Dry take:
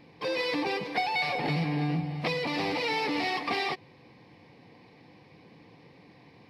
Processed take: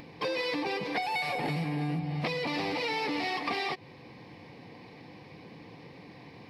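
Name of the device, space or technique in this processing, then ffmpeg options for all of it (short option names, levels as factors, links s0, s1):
upward and downward compression: -filter_complex "[0:a]asettb=1/sr,asplit=3[s0][s1][s2];[s0]atrim=end=1.024[s3];[s1]atrim=start=1.02:end=1.99,asetpts=PTS-STARTPTS,afade=t=in:d=0.004:c=qsin,afade=t=out:st=0.966:d=0.004:c=qsin,highshelf=f=6600:t=q:w=1.5:g=7[s4];[s2]atrim=start=1.986[s5];[s3][s4]acrossfade=d=0.004:c1=hsin:c2=qsin[s6];[s6][s5]acrossfade=d=0.004:c1=qsin:c2=hsin,acompressor=mode=upward:threshold=0.00282:ratio=2.5,acompressor=threshold=0.02:ratio=6,volume=1.78"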